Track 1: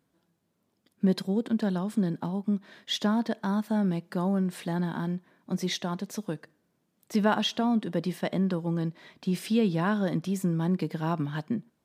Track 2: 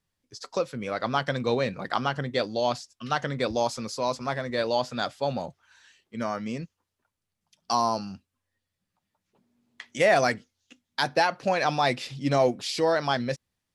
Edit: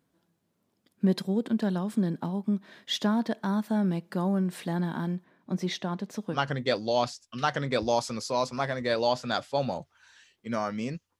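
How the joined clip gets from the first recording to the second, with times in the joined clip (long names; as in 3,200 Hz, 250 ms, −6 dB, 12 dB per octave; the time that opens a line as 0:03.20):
track 1
0:05.24–0:06.39: low-pass filter 3,800 Hz 6 dB per octave
0:06.35: continue with track 2 from 0:02.03, crossfade 0.08 s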